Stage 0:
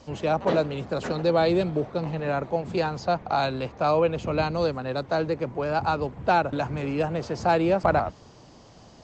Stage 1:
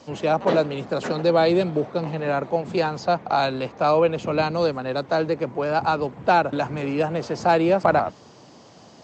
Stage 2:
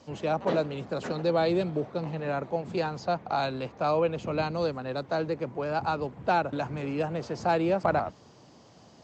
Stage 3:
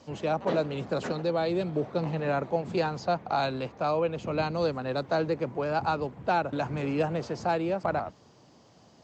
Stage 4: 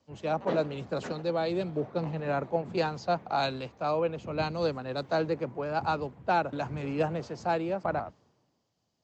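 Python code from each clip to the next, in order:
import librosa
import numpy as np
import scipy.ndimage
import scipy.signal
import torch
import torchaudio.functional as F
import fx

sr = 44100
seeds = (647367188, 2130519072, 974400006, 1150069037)

y1 = scipy.signal.sosfilt(scipy.signal.butter(2, 150.0, 'highpass', fs=sr, output='sos'), x)
y1 = F.gain(torch.from_numpy(y1), 3.5).numpy()
y2 = fx.low_shelf(y1, sr, hz=90.0, db=10.5)
y2 = F.gain(torch.from_numpy(y2), -7.5).numpy()
y3 = fx.rider(y2, sr, range_db=10, speed_s=0.5)
y4 = fx.band_widen(y3, sr, depth_pct=70)
y4 = F.gain(torch.from_numpy(y4), -1.5).numpy()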